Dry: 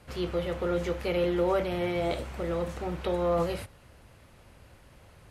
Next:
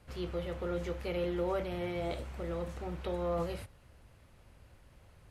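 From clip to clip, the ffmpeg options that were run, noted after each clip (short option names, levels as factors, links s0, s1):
-af "lowshelf=f=92:g=7,volume=0.422"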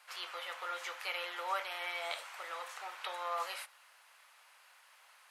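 -af "highpass=f=920:w=0.5412,highpass=f=920:w=1.3066,volume=2.37"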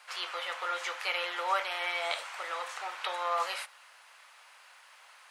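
-af "equalizer=f=13000:w=2:g=-13,volume=2.11"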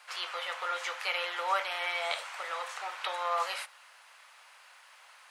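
-af "highpass=f=380:w=0.5412,highpass=f=380:w=1.3066"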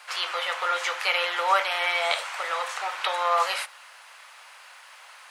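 -af "bandreject=f=60:t=h:w=6,bandreject=f=120:t=h:w=6,bandreject=f=180:t=h:w=6,bandreject=f=240:t=h:w=6,bandreject=f=300:t=h:w=6,bandreject=f=360:t=h:w=6,volume=2.51"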